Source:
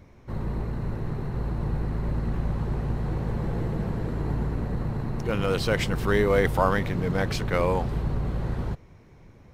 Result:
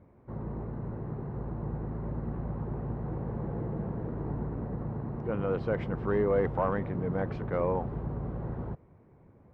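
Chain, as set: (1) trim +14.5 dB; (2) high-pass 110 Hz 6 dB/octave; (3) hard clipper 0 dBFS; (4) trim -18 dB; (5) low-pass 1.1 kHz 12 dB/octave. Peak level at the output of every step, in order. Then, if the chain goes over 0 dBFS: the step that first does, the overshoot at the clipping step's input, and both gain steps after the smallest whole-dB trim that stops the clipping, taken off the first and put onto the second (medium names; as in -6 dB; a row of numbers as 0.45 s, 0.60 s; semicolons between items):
+7.0 dBFS, +7.5 dBFS, 0.0 dBFS, -18.0 dBFS, -17.5 dBFS; step 1, 7.5 dB; step 1 +6.5 dB, step 4 -10 dB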